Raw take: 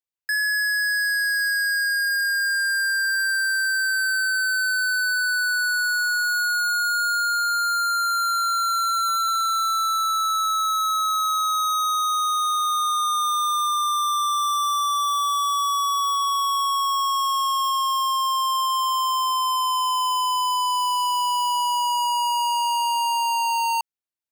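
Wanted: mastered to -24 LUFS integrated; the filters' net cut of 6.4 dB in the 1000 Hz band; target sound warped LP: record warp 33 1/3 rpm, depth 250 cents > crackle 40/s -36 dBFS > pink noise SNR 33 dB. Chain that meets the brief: bell 1000 Hz -8 dB; record warp 33 1/3 rpm, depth 250 cents; crackle 40/s -36 dBFS; pink noise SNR 33 dB; gain +0.5 dB

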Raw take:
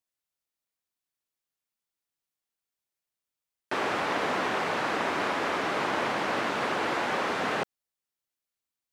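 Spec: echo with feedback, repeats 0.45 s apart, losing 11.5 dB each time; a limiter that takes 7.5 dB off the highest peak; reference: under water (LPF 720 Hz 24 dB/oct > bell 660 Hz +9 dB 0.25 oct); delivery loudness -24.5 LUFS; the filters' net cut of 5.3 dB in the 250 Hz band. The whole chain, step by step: bell 250 Hz -7.5 dB; limiter -24.5 dBFS; LPF 720 Hz 24 dB/oct; bell 660 Hz +9 dB 0.25 oct; feedback echo 0.45 s, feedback 27%, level -11.5 dB; gain +12 dB

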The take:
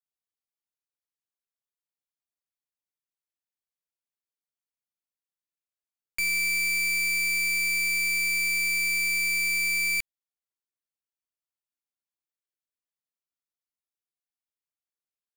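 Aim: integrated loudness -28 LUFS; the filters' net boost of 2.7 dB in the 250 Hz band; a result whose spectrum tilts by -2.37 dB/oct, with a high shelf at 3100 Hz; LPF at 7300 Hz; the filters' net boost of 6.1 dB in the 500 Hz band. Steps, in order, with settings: LPF 7300 Hz; bell 250 Hz +3.5 dB; bell 500 Hz +7.5 dB; high shelf 3100 Hz -5.5 dB; gain -2 dB

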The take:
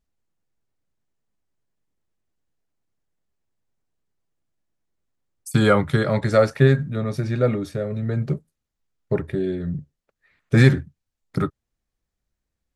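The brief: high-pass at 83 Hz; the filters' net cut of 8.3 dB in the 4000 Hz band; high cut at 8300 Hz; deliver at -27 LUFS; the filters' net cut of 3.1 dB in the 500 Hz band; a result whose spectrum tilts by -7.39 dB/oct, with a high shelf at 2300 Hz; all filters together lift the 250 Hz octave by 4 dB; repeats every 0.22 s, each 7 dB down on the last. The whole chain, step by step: HPF 83 Hz; LPF 8300 Hz; bell 250 Hz +6.5 dB; bell 500 Hz -5.5 dB; high shelf 2300 Hz -5.5 dB; bell 4000 Hz -5 dB; feedback echo 0.22 s, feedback 45%, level -7 dB; gain -7 dB

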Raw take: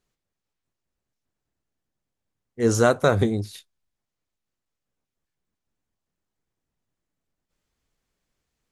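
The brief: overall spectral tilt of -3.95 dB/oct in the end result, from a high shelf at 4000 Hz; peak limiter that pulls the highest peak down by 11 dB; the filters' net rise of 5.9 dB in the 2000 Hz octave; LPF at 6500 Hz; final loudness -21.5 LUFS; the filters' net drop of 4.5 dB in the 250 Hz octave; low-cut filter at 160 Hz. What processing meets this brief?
HPF 160 Hz; LPF 6500 Hz; bell 250 Hz -5 dB; bell 2000 Hz +8.5 dB; high shelf 4000 Hz +5 dB; gain +5.5 dB; limiter -7.5 dBFS

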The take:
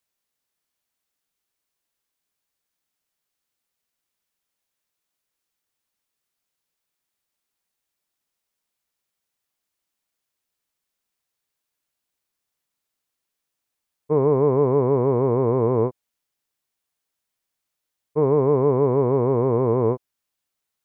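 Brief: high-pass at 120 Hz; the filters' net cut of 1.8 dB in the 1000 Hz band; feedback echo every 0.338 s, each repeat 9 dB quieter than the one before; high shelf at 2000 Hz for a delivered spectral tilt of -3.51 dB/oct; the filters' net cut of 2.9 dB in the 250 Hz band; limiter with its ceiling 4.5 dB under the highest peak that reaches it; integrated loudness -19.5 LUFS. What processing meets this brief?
HPF 120 Hz; bell 250 Hz -3.5 dB; bell 1000 Hz -3.5 dB; high shelf 2000 Hz +8 dB; limiter -14 dBFS; feedback echo 0.338 s, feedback 35%, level -9 dB; gain +4.5 dB

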